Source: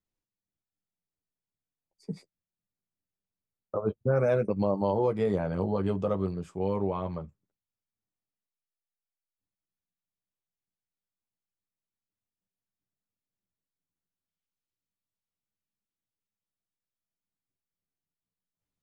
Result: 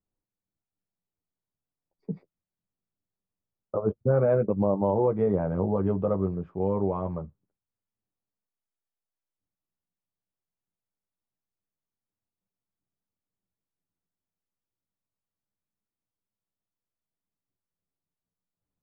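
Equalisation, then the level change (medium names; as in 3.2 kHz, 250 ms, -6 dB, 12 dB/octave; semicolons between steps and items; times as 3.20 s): low-pass 1.2 kHz 12 dB/octave; distance through air 91 m; +3.0 dB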